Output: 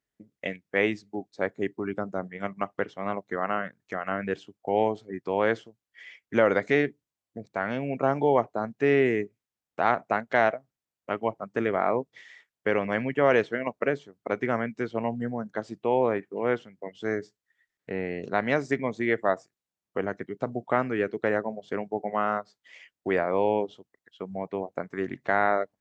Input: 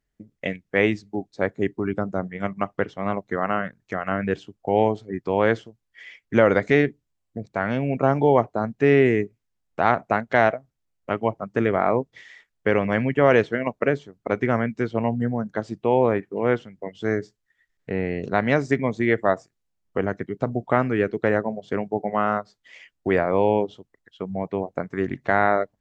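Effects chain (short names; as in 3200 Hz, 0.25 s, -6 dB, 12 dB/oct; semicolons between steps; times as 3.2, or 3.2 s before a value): HPF 240 Hz 6 dB/oct; gain -3.5 dB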